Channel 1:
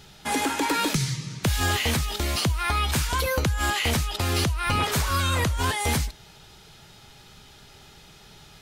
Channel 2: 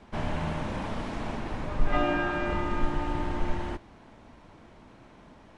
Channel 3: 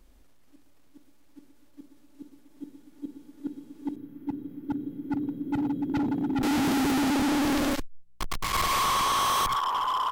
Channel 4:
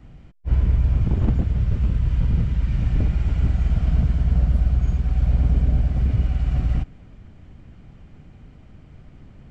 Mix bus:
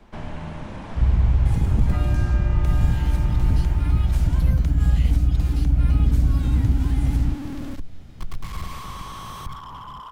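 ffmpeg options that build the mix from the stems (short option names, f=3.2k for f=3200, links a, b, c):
-filter_complex "[0:a]acrusher=bits=5:mode=log:mix=0:aa=0.000001,adelay=1200,volume=-12dB[a];[1:a]volume=-0.5dB,asplit=2[b][c];[c]volume=-4.5dB[d];[2:a]bass=f=250:g=13,treble=f=4k:g=-2,volume=-8dB[e];[3:a]adelay=500,volume=0.5dB[f];[d]aecho=0:1:756:1[g];[a][b][e][f][g]amix=inputs=5:normalize=0,acrossover=split=210[h][i];[i]acompressor=threshold=-39dB:ratio=2[j];[h][j]amix=inputs=2:normalize=0"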